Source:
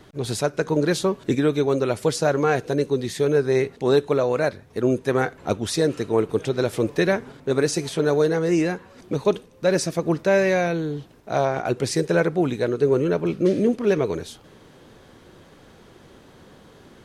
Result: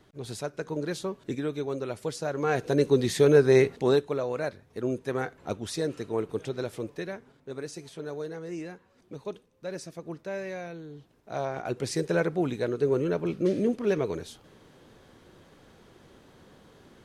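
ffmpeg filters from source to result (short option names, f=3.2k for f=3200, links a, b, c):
-af "volume=11.5dB,afade=t=in:st=2.33:d=0.64:silence=0.251189,afade=t=out:st=3.66:d=0.4:silence=0.316228,afade=t=out:st=6.48:d=0.61:silence=0.421697,afade=t=in:st=10.87:d=1.21:silence=0.298538"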